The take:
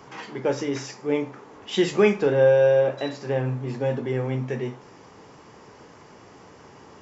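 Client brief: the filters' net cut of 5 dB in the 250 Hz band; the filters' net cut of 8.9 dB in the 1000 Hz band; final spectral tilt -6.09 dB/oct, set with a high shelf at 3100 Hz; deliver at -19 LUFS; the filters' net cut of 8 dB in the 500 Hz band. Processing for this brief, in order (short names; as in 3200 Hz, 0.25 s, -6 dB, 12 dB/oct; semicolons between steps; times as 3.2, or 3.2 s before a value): bell 250 Hz -4 dB; bell 500 Hz -6 dB; bell 1000 Hz -8.5 dB; high shelf 3100 Hz -8 dB; gain +11 dB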